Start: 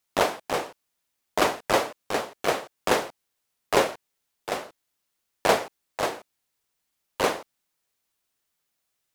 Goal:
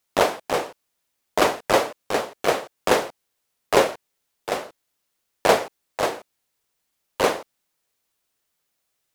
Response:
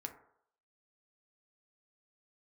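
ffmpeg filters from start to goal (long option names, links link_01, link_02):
-af "equalizer=frequency=500:width=1.7:gain=2.5,volume=2.5dB"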